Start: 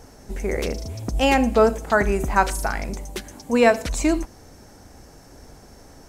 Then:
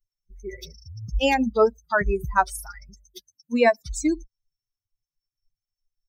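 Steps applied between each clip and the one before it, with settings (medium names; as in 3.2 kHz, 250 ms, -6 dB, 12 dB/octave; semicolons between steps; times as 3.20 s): expander on every frequency bin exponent 3; trim +1.5 dB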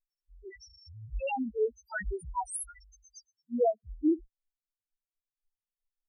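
low-pass sweep 11 kHz -> 370 Hz, 3.01–3.76 s; pre-emphasis filter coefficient 0.8; loudest bins only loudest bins 1; trim +8.5 dB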